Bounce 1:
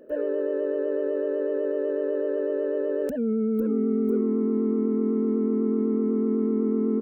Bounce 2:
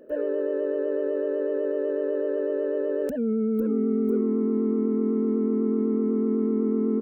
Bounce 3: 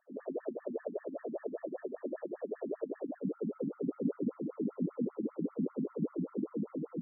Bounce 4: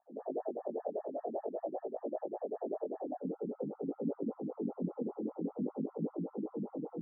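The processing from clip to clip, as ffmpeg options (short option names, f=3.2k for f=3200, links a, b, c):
-af anull
-af "afftfilt=real='hypot(re,im)*cos(2*PI*random(0))':imag='hypot(re,im)*sin(2*PI*random(1))':win_size=512:overlap=0.75,afftfilt=real='re*between(b*sr/1024,200*pow(1600/200,0.5+0.5*sin(2*PI*5.1*pts/sr))/1.41,200*pow(1600/200,0.5+0.5*sin(2*PI*5.1*pts/sr))*1.41)':imag='im*between(b*sr/1024,200*pow(1600/200,0.5+0.5*sin(2*PI*5.1*pts/sr))/1.41,200*pow(1600/200,0.5+0.5*sin(2*PI*5.1*pts/sr))*1.41)':win_size=1024:overlap=0.75"
-af "flanger=delay=17.5:depth=5.8:speed=0.49,lowpass=f=800:t=q:w=7.9,volume=-1dB"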